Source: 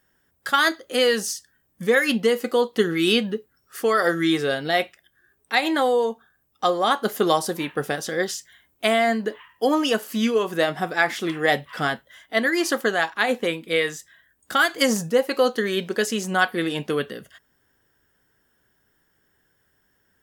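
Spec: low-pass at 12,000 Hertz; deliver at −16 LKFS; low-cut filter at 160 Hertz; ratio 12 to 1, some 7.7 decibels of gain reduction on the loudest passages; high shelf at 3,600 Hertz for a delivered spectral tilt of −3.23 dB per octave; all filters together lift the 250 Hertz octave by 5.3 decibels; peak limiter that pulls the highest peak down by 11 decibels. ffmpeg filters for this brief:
ffmpeg -i in.wav -af "highpass=160,lowpass=12000,equalizer=frequency=250:width_type=o:gain=7.5,highshelf=frequency=3600:gain=8.5,acompressor=threshold=-19dB:ratio=12,volume=11dB,alimiter=limit=-5dB:level=0:latency=1" out.wav

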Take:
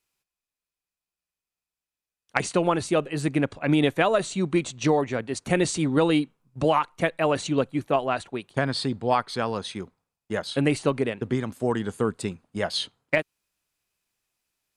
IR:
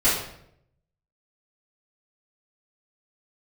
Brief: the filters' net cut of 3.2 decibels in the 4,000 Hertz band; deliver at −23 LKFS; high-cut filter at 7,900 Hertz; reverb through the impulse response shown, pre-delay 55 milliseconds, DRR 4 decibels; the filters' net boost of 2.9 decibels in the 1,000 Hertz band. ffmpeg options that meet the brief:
-filter_complex "[0:a]lowpass=7900,equalizer=frequency=1000:width_type=o:gain=4,equalizer=frequency=4000:width_type=o:gain=-4,asplit=2[link_01][link_02];[1:a]atrim=start_sample=2205,adelay=55[link_03];[link_02][link_03]afir=irnorm=-1:irlink=0,volume=-20dB[link_04];[link_01][link_04]amix=inputs=2:normalize=0"

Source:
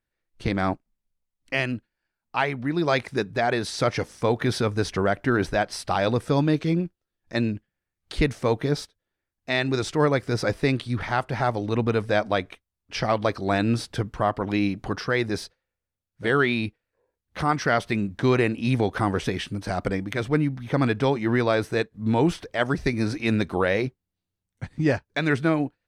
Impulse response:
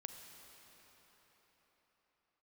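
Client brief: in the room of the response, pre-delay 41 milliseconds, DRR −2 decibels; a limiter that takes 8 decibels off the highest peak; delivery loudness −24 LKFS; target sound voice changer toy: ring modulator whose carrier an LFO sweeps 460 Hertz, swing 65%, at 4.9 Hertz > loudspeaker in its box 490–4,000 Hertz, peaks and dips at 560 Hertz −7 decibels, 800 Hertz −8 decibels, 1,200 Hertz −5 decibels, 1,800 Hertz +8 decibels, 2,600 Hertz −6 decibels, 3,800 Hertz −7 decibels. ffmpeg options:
-filter_complex "[0:a]alimiter=limit=-17dB:level=0:latency=1,asplit=2[link_01][link_02];[1:a]atrim=start_sample=2205,adelay=41[link_03];[link_02][link_03]afir=irnorm=-1:irlink=0,volume=6dB[link_04];[link_01][link_04]amix=inputs=2:normalize=0,aeval=exprs='val(0)*sin(2*PI*460*n/s+460*0.65/4.9*sin(2*PI*4.9*n/s))':channel_layout=same,highpass=490,equalizer=frequency=560:width_type=q:width=4:gain=-7,equalizer=frequency=800:width_type=q:width=4:gain=-8,equalizer=frequency=1200:width_type=q:width=4:gain=-5,equalizer=frequency=1800:width_type=q:width=4:gain=8,equalizer=frequency=2600:width_type=q:width=4:gain=-6,equalizer=frequency=3800:width_type=q:width=4:gain=-7,lowpass=frequency=4000:width=0.5412,lowpass=frequency=4000:width=1.3066,volume=8dB"

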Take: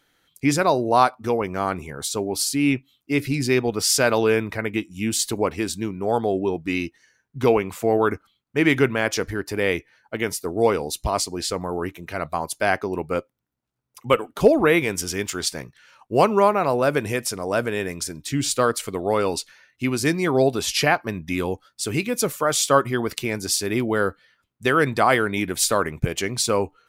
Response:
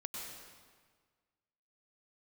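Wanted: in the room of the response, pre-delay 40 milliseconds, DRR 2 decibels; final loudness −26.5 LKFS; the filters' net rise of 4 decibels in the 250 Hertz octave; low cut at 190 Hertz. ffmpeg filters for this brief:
-filter_complex "[0:a]highpass=190,equalizer=frequency=250:width_type=o:gain=6.5,asplit=2[link_01][link_02];[1:a]atrim=start_sample=2205,adelay=40[link_03];[link_02][link_03]afir=irnorm=-1:irlink=0,volume=-1.5dB[link_04];[link_01][link_04]amix=inputs=2:normalize=0,volume=-7.5dB"

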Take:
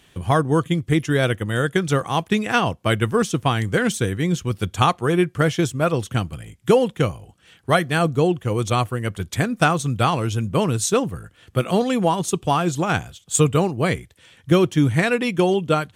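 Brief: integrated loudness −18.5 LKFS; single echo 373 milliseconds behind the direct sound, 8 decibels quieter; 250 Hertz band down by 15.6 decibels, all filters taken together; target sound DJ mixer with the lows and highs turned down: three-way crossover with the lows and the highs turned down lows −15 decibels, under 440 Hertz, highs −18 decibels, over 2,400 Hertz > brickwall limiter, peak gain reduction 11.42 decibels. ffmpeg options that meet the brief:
ffmpeg -i in.wav -filter_complex "[0:a]acrossover=split=440 2400:gain=0.178 1 0.126[link_01][link_02][link_03];[link_01][link_02][link_03]amix=inputs=3:normalize=0,equalizer=frequency=250:width_type=o:gain=-8,aecho=1:1:373:0.398,volume=11.5dB,alimiter=limit=-6dB:level=0:latency=1" out.wav

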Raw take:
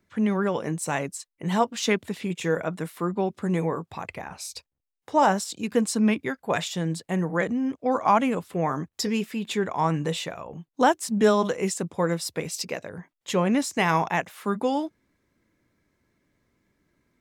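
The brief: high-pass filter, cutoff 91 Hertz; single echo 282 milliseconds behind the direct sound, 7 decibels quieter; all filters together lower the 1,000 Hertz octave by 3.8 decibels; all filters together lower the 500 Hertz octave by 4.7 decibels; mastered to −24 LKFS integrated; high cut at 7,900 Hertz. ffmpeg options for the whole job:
ffmpeg -i in.wav -af "highpass=91,lowpass=7900,equalizer=frequency=500:width_type=o:gain=-5,equalizer=frequency=1000:width_type=o:gain=-3,aecho=1:1:282:0.447,volume=3.5dB" out.wav

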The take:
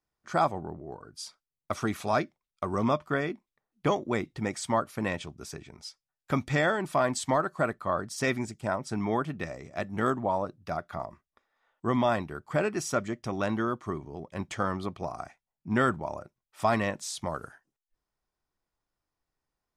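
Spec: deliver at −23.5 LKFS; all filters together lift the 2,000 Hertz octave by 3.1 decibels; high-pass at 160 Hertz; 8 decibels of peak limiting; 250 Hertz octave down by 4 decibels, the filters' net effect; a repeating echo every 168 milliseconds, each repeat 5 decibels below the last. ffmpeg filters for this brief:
ffmpeg -i in.wav -af "highpass=160,equalizer=frequency=250:width_type=o:gain=-4,equalizer=frequency=2000:width_type=o:gain=4,alimiter=limit=-19dB:level=0:latency=1,aecho=1:1:168|336|504|672|840|1008|1176:0.562|0.315|0.176|0.0988|0.0553|0.031|0.0173,volume=9.5dB" out.wav

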